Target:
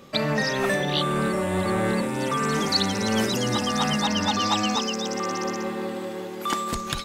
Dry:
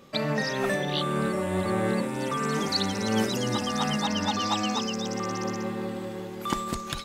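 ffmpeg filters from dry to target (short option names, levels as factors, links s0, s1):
-filter_complex "[0:a]asettb=1/sr,asplit=3[s0][s1][s2];[s0]atrim=end=4.764[s3];[s1]atrim=start=4.76:end=6.73,asetpts=PTS-STARTPTS,afade=t=in:d=0.004:c=qsin,afade=t=out:st=1.966:d=0.004:c=qsin,highpass=230[s4];[s2]atrim=start=6.726[s5];[s3][s4]acrossfade=d=0.004:c1=hsin:c2=qsin[s6];[s6][s5]acrossfade=d=0.004:c1=qsin:c2=hsin,acrossover=split=1100[s7][s8];[s7]asoftclip=type=tanh:threshold=0.0708[s9];[s9][s8]amix=inputs=2:normalize=0,volume=1.68"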